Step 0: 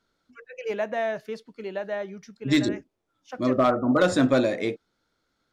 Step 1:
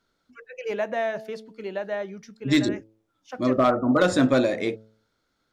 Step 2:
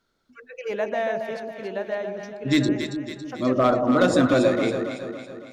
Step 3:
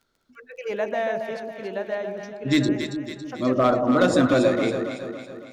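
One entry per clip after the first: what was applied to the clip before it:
hum removal 109.6 Hz, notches 8; level +1 dB
delay that swaps between a low-pass and a high-pass 139 ms, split 830 Hz, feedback 71%, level −4 dB
surface crackle 27 per second −47 dBFS

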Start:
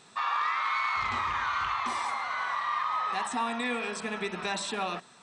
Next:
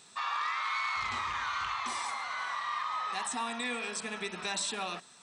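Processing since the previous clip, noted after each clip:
high-shelf EQ 3,400 Hz +11.5 dB
level −6 dB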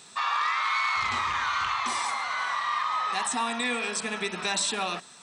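high-pass filter 55 Hz
level +6.5 dB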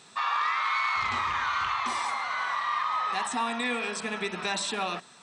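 high-shelf EQ 5,100 Hz −9 dB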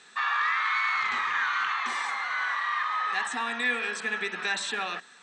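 loudspeaker in its box 290–8,000 Hz, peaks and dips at 340 Hz −4 dB, 630 Hz −8 dB, 990 Hz −5 dB, 1,700 Hz +9 dB, 5,100 Hz −5 dB

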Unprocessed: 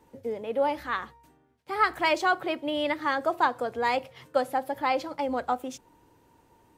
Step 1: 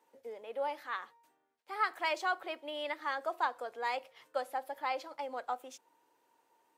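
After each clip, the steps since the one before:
high-pass filter 520 Hz 12 dB per octave
level −8 dB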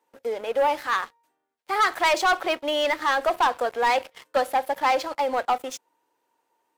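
leveller curve on the samples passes 3
level +5 dB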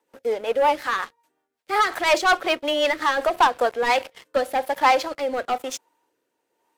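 rotating-speaker cabinet horn 5.5 Hz, later 1 Hz, at 0:03.26
level +5 dB

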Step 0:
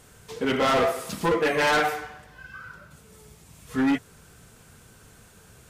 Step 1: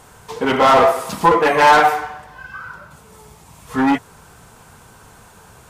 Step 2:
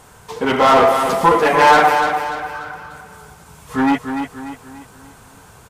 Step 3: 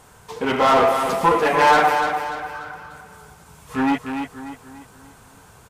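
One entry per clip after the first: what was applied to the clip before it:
parametric band 920 Hz +11.5 dB 0.9 octaves; level +5 dB
repeating echo 293 ms, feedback 42%, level −7.5 dB
loose part that buzzes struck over −30 dBFS, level −24 dBFS; level −4 dB

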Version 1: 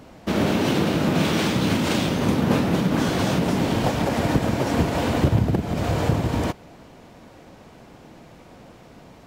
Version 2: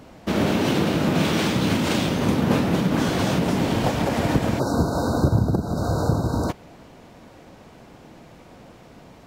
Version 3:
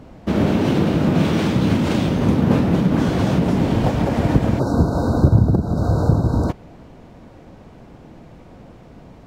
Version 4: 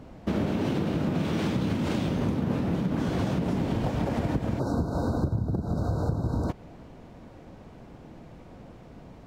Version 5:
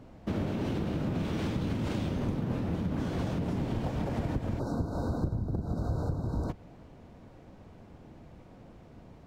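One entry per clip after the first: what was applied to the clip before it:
time-frequency box erased 0:04.59–0:06.50, 1,600–3,700 Hz
spectral tilt −2 dB per octave
downward compressor, threshold −19 dBFS, peak gain reduction 12 dB; level −4.5 dB
sub-octave generator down 1 octave, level −4 dB; level −5.5 dB

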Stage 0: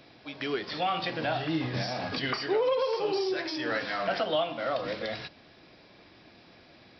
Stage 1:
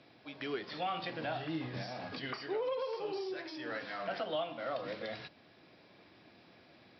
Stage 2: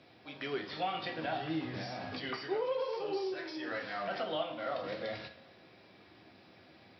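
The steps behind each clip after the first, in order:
high-pass filter 90 Hz; high-frequency loss of the air 78 metres; speech leveller within 4 dB 2 s; level −8.5 dB
convolution reverb, pre-delay 3 ms, DRR 3.5 dB

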